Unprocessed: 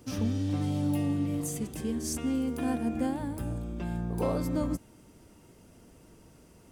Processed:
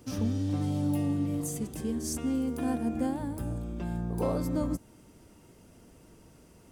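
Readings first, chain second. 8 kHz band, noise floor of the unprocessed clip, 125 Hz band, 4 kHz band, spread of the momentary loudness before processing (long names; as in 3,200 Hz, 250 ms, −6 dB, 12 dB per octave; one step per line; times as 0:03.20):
−0.5 dB, −57 dBFS, 0.0 dB, −2.0 dB, 6 LU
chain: dynamic equaliser 2,500 Hz, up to −4 dB, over −54 dBFS, Q 0.97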